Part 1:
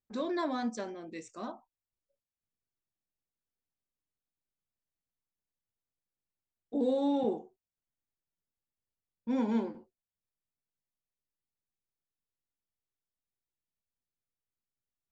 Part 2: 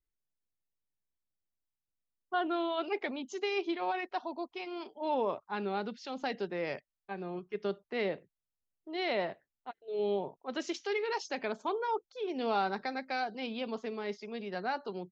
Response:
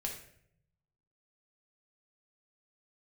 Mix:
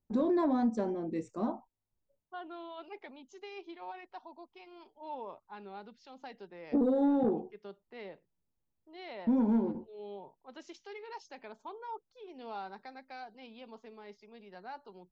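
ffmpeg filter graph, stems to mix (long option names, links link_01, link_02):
-filter_complex "[0:a]tiltshelf=frequency=800:gain=10,volume=2dB[link_01];[1:a]volume=-13.5dB[link_02];[link_01][link_02]amix=inputs=2:normalize=0,equalizer=frequency=900:width=3.5:gain=6,asoftclip=type=tanh:threshold=-14dB,acompressor=threshold=-25dB:ratio=6"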